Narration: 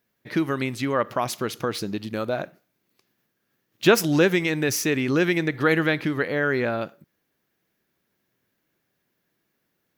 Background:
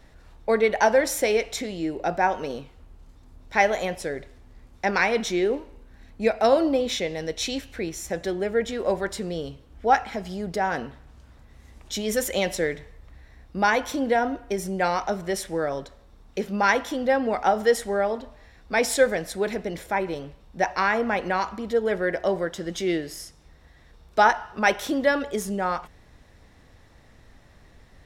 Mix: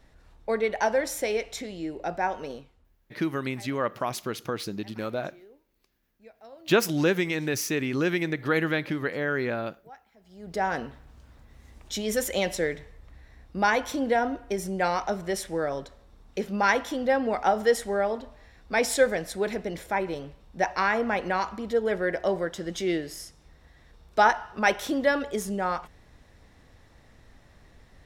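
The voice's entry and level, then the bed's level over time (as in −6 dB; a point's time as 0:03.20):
2.85 s, −4.5 dB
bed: 0:02.52 −5.5 dB
0:03.30 −29.5 dB
0:10.15 −29.5 dB
0:10.59 −2 dB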